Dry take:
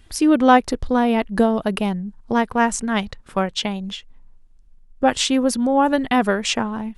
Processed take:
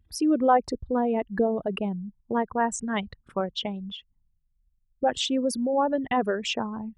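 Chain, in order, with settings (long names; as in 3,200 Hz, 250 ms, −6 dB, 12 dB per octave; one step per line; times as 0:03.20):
spectral envelope exaggerated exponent 2
high-pass filter 46 Hz 12 dB per octave
level −7 dB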